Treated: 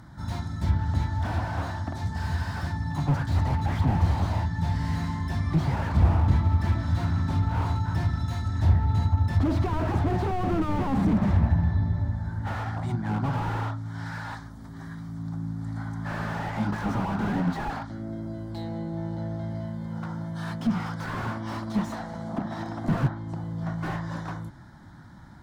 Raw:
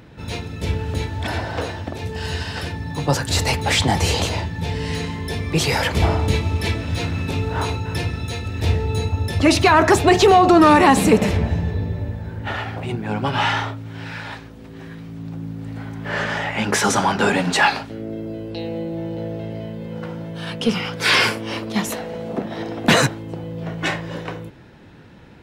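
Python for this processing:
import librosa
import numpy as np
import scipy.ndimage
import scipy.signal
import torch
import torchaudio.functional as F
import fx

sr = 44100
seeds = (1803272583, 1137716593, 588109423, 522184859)

y = fx.env_lowpass_down(x, sr, base_hz=2600.0, full_db=-15.5)
y = fx.fixed_phaser(y, sr, hz=1100.0, stages=4)
y = fx.slew_limit(y, sr, full_power_hz=26.0)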